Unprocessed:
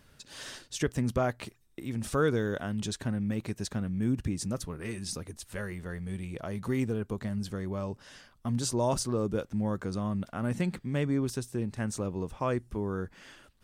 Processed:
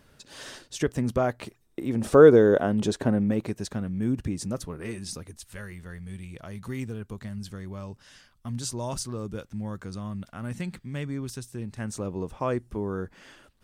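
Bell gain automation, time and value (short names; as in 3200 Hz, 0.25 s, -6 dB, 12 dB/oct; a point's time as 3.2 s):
bell 480 Hz 2.7 oct
1.44 s +4.5 dB
2.11 s +15 dB
3.16 s +15 dB
3.63 s +3.5 dB
4.91 s +3.5 dB
5.51 s -6.5 dB
11.52 s -6.5 dB
12.15 s +3 dB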